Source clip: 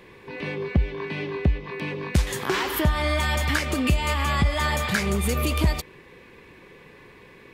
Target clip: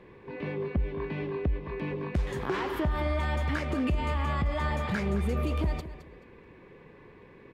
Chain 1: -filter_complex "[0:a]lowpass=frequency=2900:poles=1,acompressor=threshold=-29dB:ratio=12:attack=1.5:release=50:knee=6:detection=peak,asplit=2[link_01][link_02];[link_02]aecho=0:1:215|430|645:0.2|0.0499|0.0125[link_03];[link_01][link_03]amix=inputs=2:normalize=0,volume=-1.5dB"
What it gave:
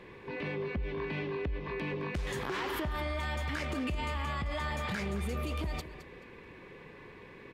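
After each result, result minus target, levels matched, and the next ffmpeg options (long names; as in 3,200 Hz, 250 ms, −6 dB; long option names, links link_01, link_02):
downward compressor: peak gain reduction +8 dB; 4,000 Hz band +6.0 dB
-filter_complex "[0:a]lowpass=frequency=2900:poles=1,acompressor=threshold=-20.5dB:ratio=12:attack=1.5:release=50:knee=6:detection=peak,asplit=2[link_01][link_02];[link_02]aecho=0:1:215|430|645:0.2|0.0499|0.0125[link_03];[link_01][link_03]amix=inputs=2:normalize=0,volume=-1.5dB"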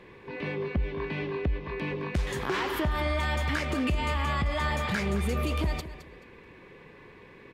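4,000 Hz band +6.0 dB
-filter_complex "[0:a]lowpass=frequency=970:poles=1,acompressor=threshold=-20.5dB:ratio=12:attack=1.5:release=50:knee=6:detection=peak,asplit=2[link_01][link_02];[link_02]aecho=0:1:215|430|645:0.2|0.0499|0.0125[link_03];[link_01][link_03]amix=inputs=2:normalize=0,volume=-1.5dB"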